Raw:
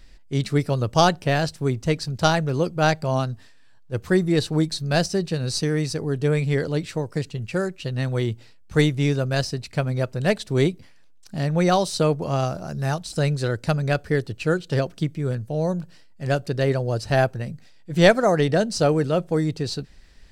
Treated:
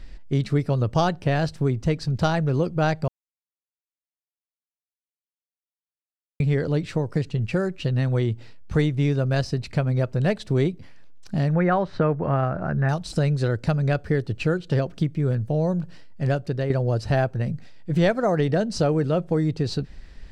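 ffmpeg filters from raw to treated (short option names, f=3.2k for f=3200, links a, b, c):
-filter_complex "[0:a]asettb=1/sr,asplit=3[a][b][c];[a]atrim=end=11.534[d];[b]atrim=start=11.53:end=12.89,asetpts=PTS-STARTPTS,afade=t=in:d=0.004:c=qsin,afade=t=out:st=1.356:d=0.004:c=qsin,lowpass=f=1.7k:t=q:w=2.7[e];[c]atrim=start=12.886[f];[d][e]acrossfade=d=0.004:c1=hsin:c2=qsin[g];[g][f]acrossfade=d=0.004:c1=qsin:c2=hsin,asplit=4[h][i][j][k];[h]atrim=end=3.08,asetpts=PTS-STARTPTS,afade=t=out:st=3.076:d=0.004:c=hsin[l];[i]atrim=start=3.08:end=6.4,asetpts=PTS-STARTPTS,volume=0[m];[j]atrim=start=6.4:end=16.7,asetpts=PTS-STARTPTS,afade=t=in:d=0.004:c=hsin,afade=t=out:st=9.84:d=0.46:silence=0.266073[n];[k]atrim=start=16.7,asetpts=PTS-STARTPTS,afade=t=in:d=0.004:c=hsin:silence=0.266073[o];[l][m][n][o]concat=n=4:v=0:a=1,lowpass=f=3k:p=1,lowshelf=f=250:g=4,acompressor=threshold=-27dB:ratio=2.5,volume=5dB"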